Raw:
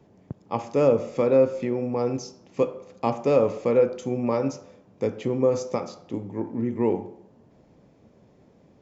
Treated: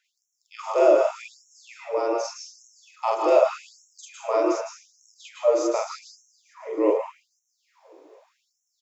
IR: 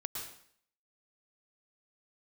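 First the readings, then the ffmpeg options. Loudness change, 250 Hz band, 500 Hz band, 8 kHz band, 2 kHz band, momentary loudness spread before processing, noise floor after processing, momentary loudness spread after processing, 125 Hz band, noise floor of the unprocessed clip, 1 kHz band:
+1.5 dB, −5.0 dB, 0.0 dB, can't be measured, +3.0 dB, 13 LU, −77 dBFS, 22 LU, below −40 dB, −57 dBFS, +4.5 dB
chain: -filter_complex "[0:a]afreqshift=82,aecho=1:1:430|860|1290|1720:0.0794|0.0469|0.0277|0.0163,asplit=2[link_01][link_02];[1:a]atrim=start_sample=2205,highshelf=frequency=6600:gain=7,adelay=45[link_03];[link_02][link_03]afir=irnorm=-1:irlink=0,volume=1dB[link_04];[link_01][link_04]amix=inputs=2:normalize=0,afftfilt=real='re*gte(b*sr/1024,280*pow(5500/280,0.5+0.5*sin(2*PI*0.84*pts/sr)))':imag='im*gte(b*sr/1024,280*pow(5500/280,0.5+0.5*sin(2*PI*0.84*pts/sr)))':win_size=1024:overlap=0.75"

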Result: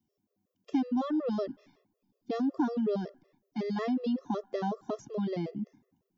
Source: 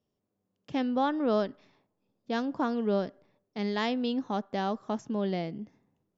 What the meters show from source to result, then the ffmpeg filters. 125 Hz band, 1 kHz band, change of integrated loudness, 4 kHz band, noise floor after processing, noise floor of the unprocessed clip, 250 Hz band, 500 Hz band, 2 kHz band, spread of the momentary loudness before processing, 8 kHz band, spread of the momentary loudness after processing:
−1.5 dB, −5.5 dB, −2.0 dB, −9.5 dB, −83 dBFS, −82 dBFS, 0.0 dB, −3.0 dB, −8.5 dB, 10 LU, can't be measured, 11 LU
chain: -filter_complex "[0:a]equalizer=frequency=280:width_type=o:width=1.5:gain=6.5,acrossover=split=1800|4400[link_01][link_02][link_03];[link_01]acompressor=threshold=-24dB:ratio=4[link_04];[link_02]acompressor=threshold=-53dB:ratio=4[link_05];[link_03]acompressor=threshold=-53dB:ratio=4[link_06];[link_04][link_05][link_06]amix=inputs=3:normalize=0,acrossover=split=140|2800[link_07][link_08][link_09];[link_09]aexciter=amount=1.3:drive=5.5:freq=5200[link_10];[link_07][link_08][link_10]amix=inputs=3:normalize=0,afftfilt=real='re*gt(sin(2*PI*5.4*pts/sr)*(1-2*mod(floor(b*sr/1024/350),2)),0)':imag='im*gt(sin(2*PI*5.4*pts/sr)*(1-2*mod(floor(b*sr/1024/350),2)),0)':win_size=1024:overlap=0.75"

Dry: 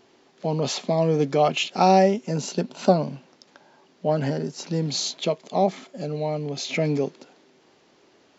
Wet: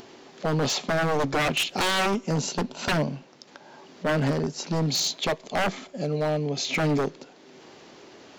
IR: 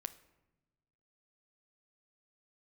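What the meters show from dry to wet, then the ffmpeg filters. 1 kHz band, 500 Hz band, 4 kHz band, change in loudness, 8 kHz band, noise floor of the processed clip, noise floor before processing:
−5.0 dB, −5.0 dB, +2.5 dB, −2.0 dB, can't be measured, −52 dBFS, −59 dBFS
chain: -filter_complex "[0:a]aeval=exprs='0.0944*(abs(mod(val(0)/0.0944+3,4)-2)-1)':channel_layout=same,acompressor=mode=upward:threshold=-41dB:ratio=2.5,asplit=2[link_01][link_02];[1:a]atrim=start_sample=2205,afade=type=out:start_time=0.35:duration=0.01,atrim=end_sample=15876[link_03];[link_02][link_03]afir=irnorm=-1:irlink=0,volume=-8.5dB[link_04];[link_01][link_04]amix=inputs=2:normalize=0"

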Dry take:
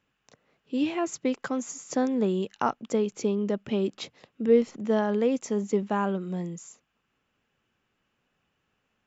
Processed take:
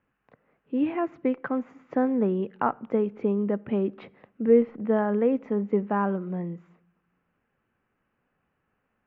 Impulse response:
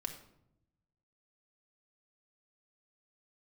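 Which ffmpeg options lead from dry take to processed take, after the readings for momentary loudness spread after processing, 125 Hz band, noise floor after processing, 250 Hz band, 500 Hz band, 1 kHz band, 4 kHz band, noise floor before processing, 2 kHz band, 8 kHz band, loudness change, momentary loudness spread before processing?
10 LU, +1.5 dB, −77 dBFS, +1.5 dB, +1.0 dB, +1.5 dB, below −10 dB, −77 dBFS, 0.0 dB, can't be measured, +1.5 dB, 10 LU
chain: -filter_complex "[0:a]lowpass=frequency=2100:width=0.5412,lowpass=frequency=2100:width=1.3066,asplit=2[link_01][link_02];[1:a]atrim=start_sample=2205[link_03];[link_02][link_03]afir=irnorm=-1:irlink=0,volume=-14.5dB[link_04];[link_01][link_04]amix=inputs=2:normalize=0"

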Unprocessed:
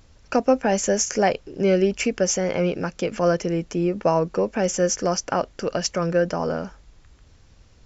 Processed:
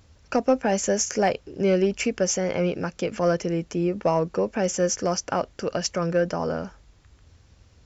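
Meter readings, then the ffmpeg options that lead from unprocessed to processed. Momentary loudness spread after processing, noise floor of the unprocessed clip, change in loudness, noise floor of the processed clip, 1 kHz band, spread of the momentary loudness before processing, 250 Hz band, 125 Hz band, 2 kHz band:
6 LU, −53 dBFS, −2.0 dB, −57 dBFS, −2.5 dB, 6 LU, −2.0 dB, −1.5 dB, −2.0 dB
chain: -filter_complex "[0:a]highpass=44,equalizer=frequency=81:width_type=o:width=0.7:gain=5,asplit=2[link_01][link_02];[link_02]aeval=exprs='clip(val(0),-1,0.211)':channel_layout=same,volume=-6dB[link_03];[link_01][link_03]amix=inputs=2:normalize=0,volume=-5.5dB"

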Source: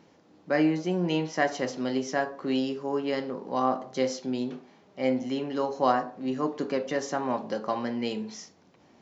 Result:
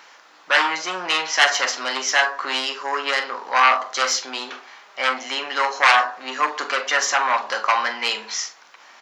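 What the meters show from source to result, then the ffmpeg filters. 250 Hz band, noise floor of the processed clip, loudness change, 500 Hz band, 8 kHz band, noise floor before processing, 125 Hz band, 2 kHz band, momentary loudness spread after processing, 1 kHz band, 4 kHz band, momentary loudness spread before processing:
−12.0 dB, −50 dBFS, +9.0 dB, −1.0 dB, can't be measured, −60 dBFS, below −20 dB, +17.5 dB, 10 LU, +11.0 dB, +17.5 dB, 7 LU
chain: -filter_complex "[0:a]aeval=exprs='0.335*sin(PI/2*3.55*val(0)/0.335)':channel_layout=same,highpass=frequency=1300:width_type=q:width=1.5,asplit=2[link_01][link_02];[link_02]adelay=43,volume=-12.5dB[link_03];[link_01][link_03]amix=inputs=2:normalize=0,volume=2dB"

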